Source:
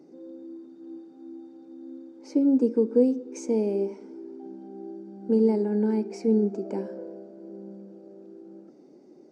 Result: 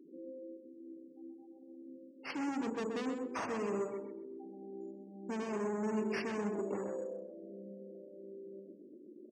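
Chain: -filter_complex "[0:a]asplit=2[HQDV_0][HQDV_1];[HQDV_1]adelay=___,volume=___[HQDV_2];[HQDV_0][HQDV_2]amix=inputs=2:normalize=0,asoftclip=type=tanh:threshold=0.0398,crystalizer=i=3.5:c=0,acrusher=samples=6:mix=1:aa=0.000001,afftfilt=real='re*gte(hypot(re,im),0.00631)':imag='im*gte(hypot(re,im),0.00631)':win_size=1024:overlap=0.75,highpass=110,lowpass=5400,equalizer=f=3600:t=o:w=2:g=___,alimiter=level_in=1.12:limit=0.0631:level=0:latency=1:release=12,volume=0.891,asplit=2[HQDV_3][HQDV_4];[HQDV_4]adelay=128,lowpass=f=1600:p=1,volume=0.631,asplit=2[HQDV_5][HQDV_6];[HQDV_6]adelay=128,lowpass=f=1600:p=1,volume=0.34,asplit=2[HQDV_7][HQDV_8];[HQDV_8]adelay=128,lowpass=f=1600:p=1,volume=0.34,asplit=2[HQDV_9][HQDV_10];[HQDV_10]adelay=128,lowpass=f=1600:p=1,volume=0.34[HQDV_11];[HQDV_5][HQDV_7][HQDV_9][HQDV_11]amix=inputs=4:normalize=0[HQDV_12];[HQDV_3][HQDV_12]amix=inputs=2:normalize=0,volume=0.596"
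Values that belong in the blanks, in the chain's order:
44, 0.316, 6.5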